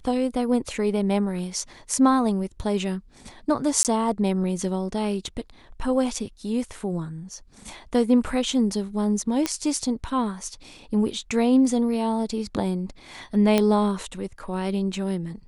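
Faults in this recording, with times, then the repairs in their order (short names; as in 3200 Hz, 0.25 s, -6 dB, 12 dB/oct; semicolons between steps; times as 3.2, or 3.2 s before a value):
3.83–3.85 gap 18 ms
9.46 pop -9 dBFS
13.58 pop -7 dBFS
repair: de-click; interpolate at 3.83, 18 ms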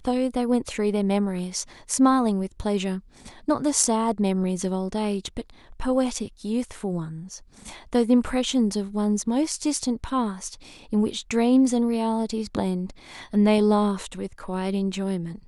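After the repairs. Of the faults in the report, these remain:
9.46 pop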